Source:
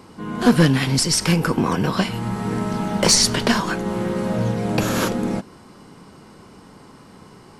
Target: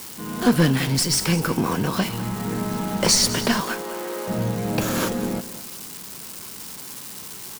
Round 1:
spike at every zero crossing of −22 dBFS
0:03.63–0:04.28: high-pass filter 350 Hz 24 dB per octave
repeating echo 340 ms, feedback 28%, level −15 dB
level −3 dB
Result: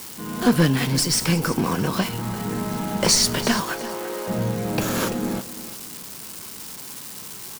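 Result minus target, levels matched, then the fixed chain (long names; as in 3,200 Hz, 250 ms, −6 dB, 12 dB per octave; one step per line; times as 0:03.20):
echo 136 ms late
spike at every zero crossing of −22 dBFS
0:03.63–0:04.28: high-pass filter 350 Hz 24 dB per octave
repeating echo 204 ms, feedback 28%, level −15 dB
level −3 dB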